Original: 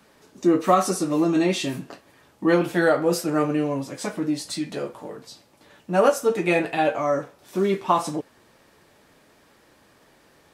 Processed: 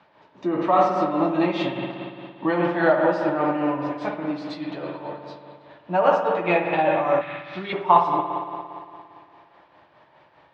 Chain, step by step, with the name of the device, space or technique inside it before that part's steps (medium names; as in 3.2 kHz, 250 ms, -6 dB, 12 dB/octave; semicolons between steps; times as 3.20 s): combo amplifier with spring reverb and tremolo (spring tank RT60 2.4 s, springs 57 ms, chirp 55 ms, DRR 1.5 dB; tremolo 4.9 Hz, depth 50%; cabinet simulation 91–3700 Hz, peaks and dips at 230 Hz -10 dB, 440 Hz -6 dB, 630 Hz +5 dB, 920 Hz +9 dB); 7.21–7.73 s: ten-band graphic EQ 125 Hz +8 dB, 250 Hz -6 dB, 500 Hz -10 dB, 1 kHz -8 dB, 2 kHz +6 dB, 4 kHz +11 dB, 8 kHz -7 dB